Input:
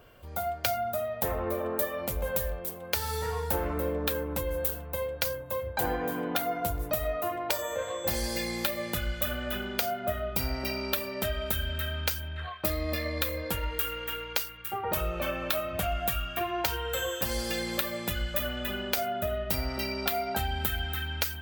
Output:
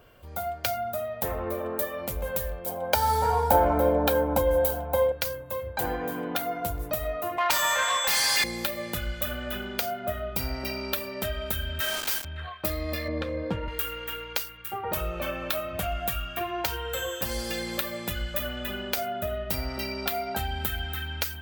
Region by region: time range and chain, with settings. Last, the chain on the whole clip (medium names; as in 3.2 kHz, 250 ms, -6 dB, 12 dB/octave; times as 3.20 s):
2.66–5.12 s: high-order bell 530 Hz +11 dB 2.6 oct + comb 1.3 ms, depth 74%
7.38–8.44 s: high-pass 860 Hz 24 dB/octave + overdrive pedal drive 25 dB, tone 6.4 kHz, clips at -13 dBFS
11.80–12.25 s: high-pass 530 Hz + companded quantiser 2-bit
13.08–13.68 s: band-pass 170–5400 Hz + tilt EQ -4 dB/octave
whole clip: none